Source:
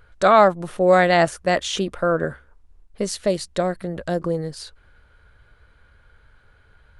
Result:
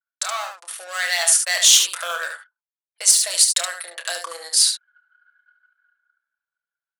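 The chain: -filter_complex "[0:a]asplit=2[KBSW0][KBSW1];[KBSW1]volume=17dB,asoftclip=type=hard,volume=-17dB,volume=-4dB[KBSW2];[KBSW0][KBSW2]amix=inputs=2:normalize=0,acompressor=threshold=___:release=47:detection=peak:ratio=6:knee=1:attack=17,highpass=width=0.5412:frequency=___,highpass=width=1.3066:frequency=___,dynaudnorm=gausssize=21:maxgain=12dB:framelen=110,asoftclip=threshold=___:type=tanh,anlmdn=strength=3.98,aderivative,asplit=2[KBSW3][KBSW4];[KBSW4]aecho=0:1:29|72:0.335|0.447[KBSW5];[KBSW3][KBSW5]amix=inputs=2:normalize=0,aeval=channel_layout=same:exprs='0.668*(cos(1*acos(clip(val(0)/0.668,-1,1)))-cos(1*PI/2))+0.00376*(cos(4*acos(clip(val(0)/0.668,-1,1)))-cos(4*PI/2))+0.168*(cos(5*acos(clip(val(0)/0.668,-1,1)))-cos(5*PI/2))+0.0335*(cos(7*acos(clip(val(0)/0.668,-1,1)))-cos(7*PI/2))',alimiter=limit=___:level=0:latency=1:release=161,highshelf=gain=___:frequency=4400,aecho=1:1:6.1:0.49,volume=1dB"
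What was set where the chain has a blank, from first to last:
-18dB, 700, 700, -8dB, -8.5dB, 4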